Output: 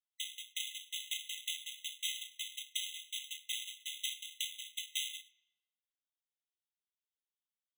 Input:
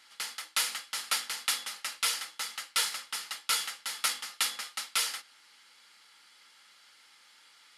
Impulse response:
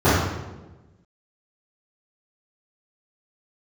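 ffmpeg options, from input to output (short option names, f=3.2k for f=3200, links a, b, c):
-filter_complex "[0:a]agate=range=-41dB:threshold=-49dB:ratio=16:detection=peak,asplit=2[a][b];[b]asetrate=29433,aresample=44100,atempo=1.49831,volume=-1dB[c];[a][c]amix=inputs=2:normalize=0,alimiter=limit=-17.5dB:level=0:latency=1:release=278,acrusher=samples=19:mix=1:aa=0.000001,asplit=2[d][e];[1:a]atrim=start_sample=2205,adelay=65[f];[e][f]afir=irnorm=-1:irlink=0,volume=-39.5dB[g];[d][g]amix=inputs=2:normalize=0,afftfilt=real='re*eq(mod(floor(b*sr/1024/2000),2),1)':imag='im*eq(mod(floor(b*sr/1024/2000),2),1)':win_size=1024:overlap=0.75,volume=3.5dB"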